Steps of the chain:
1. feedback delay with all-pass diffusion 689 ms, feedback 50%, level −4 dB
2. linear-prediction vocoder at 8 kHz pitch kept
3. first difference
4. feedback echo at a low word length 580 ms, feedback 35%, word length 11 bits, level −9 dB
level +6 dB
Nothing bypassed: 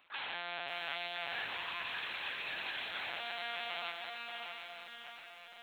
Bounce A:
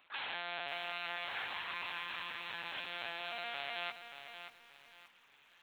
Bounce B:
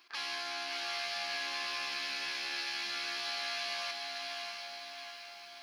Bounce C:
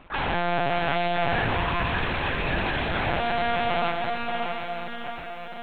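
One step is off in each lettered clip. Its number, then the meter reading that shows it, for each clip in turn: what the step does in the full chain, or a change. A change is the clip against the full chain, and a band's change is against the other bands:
1, change in momentary loudness spread +5 LU
2, 4 kHz band +3.5 dB
3, 125 Hz band +16.5 dB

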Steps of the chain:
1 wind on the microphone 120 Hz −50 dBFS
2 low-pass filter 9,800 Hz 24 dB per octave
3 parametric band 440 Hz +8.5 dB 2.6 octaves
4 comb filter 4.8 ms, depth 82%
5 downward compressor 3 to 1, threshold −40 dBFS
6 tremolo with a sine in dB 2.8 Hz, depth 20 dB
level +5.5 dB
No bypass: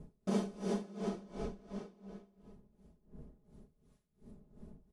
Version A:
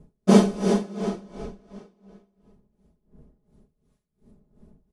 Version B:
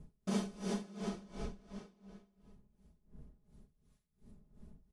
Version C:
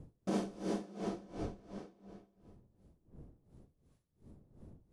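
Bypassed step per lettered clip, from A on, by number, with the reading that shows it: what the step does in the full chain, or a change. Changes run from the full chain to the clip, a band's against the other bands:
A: 5, average gain reduction 8.0 dB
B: 3, 500 Hz band −5.0 dB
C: 4, 1 kHz band +1.5 dB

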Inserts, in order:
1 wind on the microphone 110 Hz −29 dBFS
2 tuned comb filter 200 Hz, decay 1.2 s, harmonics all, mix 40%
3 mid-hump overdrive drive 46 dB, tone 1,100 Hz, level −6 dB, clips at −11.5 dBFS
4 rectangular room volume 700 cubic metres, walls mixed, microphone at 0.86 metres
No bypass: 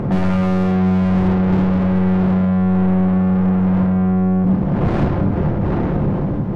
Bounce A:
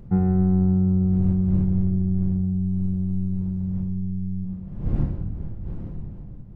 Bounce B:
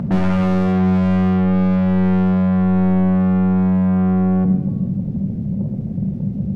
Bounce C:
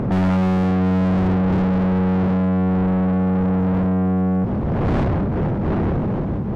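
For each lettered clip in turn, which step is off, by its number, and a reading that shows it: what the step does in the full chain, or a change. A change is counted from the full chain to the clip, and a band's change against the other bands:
3, change in crest factor +3.0 dB
1, 250 Hz band +1.5 dB
4, echo-to-direct ratio −4.5 dB to none audible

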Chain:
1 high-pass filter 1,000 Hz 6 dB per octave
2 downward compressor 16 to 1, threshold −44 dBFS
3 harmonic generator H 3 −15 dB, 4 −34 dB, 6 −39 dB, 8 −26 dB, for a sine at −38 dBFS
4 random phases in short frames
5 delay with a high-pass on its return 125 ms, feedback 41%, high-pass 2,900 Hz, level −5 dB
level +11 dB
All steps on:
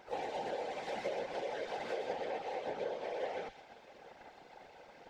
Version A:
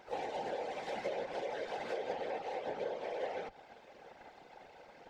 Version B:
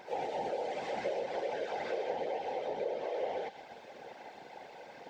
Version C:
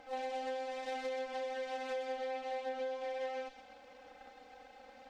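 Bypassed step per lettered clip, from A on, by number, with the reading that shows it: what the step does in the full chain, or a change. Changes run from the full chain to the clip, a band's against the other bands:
5, echo-to-direct ratio −13.0 dB to none audible
3, 4 kHz band −2.0 dB
4, change in crest factor −2.0 dB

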